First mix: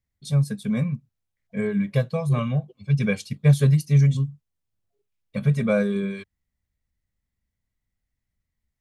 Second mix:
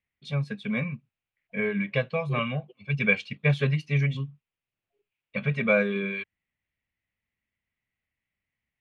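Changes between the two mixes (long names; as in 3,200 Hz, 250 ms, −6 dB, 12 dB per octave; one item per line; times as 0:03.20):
first voice: add high-pass filter 330 Hz 6 dB per octave
master: add low-pass with resonance 2,600 Hz, resonance Q 3.2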